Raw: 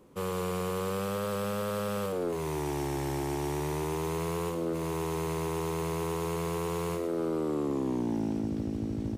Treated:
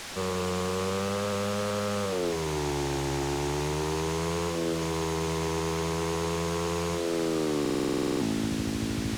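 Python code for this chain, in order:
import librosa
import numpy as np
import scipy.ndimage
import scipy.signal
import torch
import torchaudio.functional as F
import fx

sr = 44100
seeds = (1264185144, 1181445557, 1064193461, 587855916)

y = fx.peak_eq(x, sr, hz=6600.0, db=10.5, octaves=0.29)
y = fx.quant_dither(y, sr, seeds[0], bits=6, dither='triangular')
y = fx.air_absorb(y, sr, metres=71.0)
y = fx.buffer_glitch(y, sr, at_s=(7.61,), block=2048, repeats=12)
y = y * 10.0 ** (2.5 / 20.0)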